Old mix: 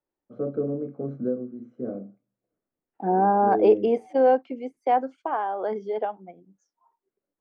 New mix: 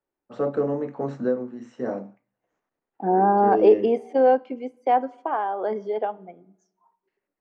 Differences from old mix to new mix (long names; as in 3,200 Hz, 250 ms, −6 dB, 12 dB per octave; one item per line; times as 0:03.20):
first voice: remove moving average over 48 samples
reverb: on, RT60 0.85 s